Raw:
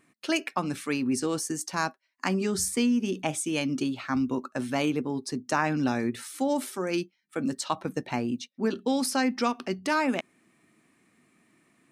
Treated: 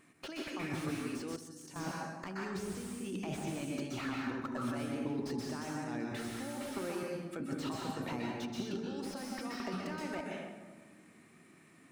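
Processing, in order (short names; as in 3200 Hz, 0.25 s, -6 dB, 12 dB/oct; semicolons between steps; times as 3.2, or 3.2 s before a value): negative-ratio compressor -35 dBFS, ratio -1; plate-style reverb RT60 1.3 s, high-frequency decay 0.55×, pre-delay 0.115 s, DRR 0 dB; 1.36–1.76 level quantiser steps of 23 dB; on a send: darkening echo 73 ms, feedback 83%, low-pass 800 Hz, level -14 dB; on the sum: slew limiter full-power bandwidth 38 Hz; gain -5.5 dB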